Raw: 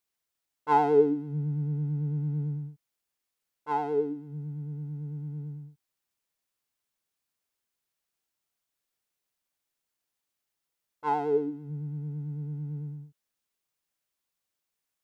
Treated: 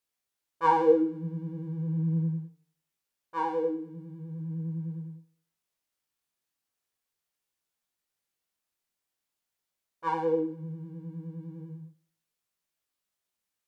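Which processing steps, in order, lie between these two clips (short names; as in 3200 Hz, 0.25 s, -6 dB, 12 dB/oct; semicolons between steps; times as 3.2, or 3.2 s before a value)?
varispeed +10%; tape echo 84 ms, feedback 43%, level -17 dB; chorus 0.4 Hz, delay 17.5 ms, depth 4.9 ms; gain +2.5 dB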